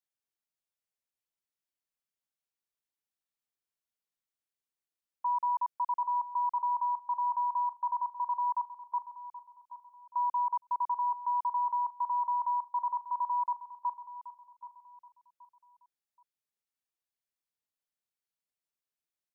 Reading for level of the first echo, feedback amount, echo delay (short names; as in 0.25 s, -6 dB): -14.0 dB, 32%, 0.777 s